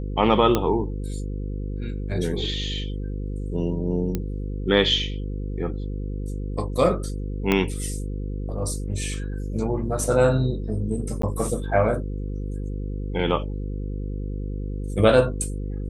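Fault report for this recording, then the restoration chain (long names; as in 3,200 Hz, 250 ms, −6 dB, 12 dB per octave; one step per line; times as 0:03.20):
mains buzz 50 Hz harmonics 10 −29 dBFS
0:00.55: click −7 dBFS
0:04.15: click −12 dBFS
0:07.52: click −7 dBFS
0:11.22–0:11.23: drop-out 13 ms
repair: click removal
hum removal 50 Hz, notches 10
repair the gap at 0:11.22, 13 ms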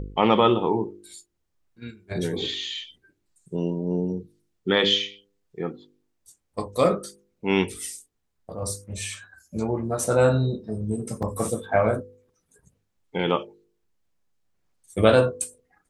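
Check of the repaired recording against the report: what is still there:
0:07.52: click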